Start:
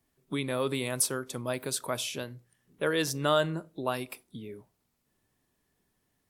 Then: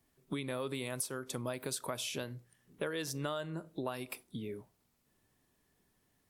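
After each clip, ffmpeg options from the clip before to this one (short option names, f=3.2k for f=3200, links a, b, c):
-af "acompressor=threshold=-35dB:ratio=10,volume=1dB"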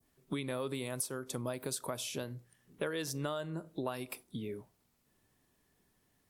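-af "adynamicequalizer=threshold=0.00224:dfrequency=2300:dqfactor=0.75:tfrequency=2300:tqfactor=0.75:attack=5:release=100:ratio=0.375:range=2.5:mode=cutabove:tftype=bell,volume=1dB"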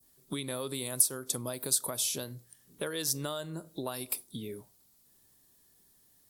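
-af "aexciter=amount=2.5:drive=7.3:freq=3.6k"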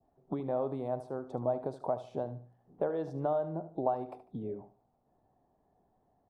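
-af "lowpass=f=750:t=q:w=5.2,aecho=1:1:74|148|222:0.211|0.0655|0.0203"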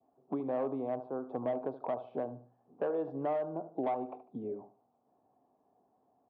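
-filter_complex "[0:a]acrossover=split=350|1400[a][b][c];[b]asoftclip=type=hard:threshold=-31.5dB[d];[a][d][c]amix=inputs=3:normalize=0,highpass=160,equalizer=f=170:t=q:w=4:g=-5,equalizer=f=260:t=q:w=4:g=5,equalizer=f=460:t=q:w=4:g=3,equalizer=f=730:t=q:w=4:g=3,equalizer=f=1.1k:t=q:w=4:g=5,equalizer=f=1.9k:t=q:w=4:g=-8,lowpass=f=2.8k:w=0.5412,lowpass=f=2.8k:w=1.3066,volume=-1.5dB"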